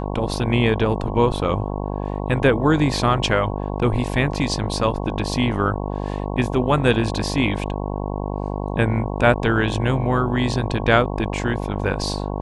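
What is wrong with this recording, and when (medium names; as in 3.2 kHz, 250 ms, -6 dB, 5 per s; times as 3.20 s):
buzz 50 Hz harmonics 22 -26 dBFS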